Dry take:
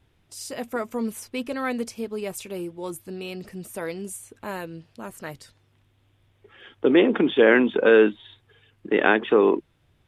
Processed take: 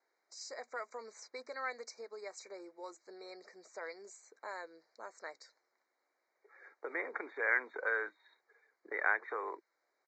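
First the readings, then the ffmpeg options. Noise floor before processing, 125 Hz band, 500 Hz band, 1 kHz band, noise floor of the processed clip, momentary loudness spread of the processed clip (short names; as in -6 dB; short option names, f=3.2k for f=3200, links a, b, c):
-64 dBFS, under -40 dB, -22.5 dB, -12.0 dB, -83 dBFS, 19 LU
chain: -filter_complex "[0:a]highpass=f=460:w=0.5412,highpass=f=460:w=1.3066,acrossover=split=1000[a][b];[a]acompressor=threshold=-37dB:ratio=4[c];[c][b]amix=inputs=2:normalize=0,asuperstop=centerf=3000:order=20:qfactor=2,aresample=16000,aresample=44100,volume=-8dB"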